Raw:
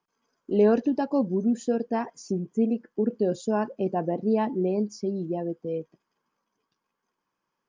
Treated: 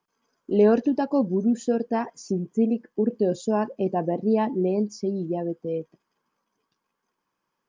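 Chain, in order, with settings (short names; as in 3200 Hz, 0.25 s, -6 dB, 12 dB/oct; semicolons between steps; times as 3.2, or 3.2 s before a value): 2.64–5.14 notch 1400 Hz, Q 7; gain +2 dB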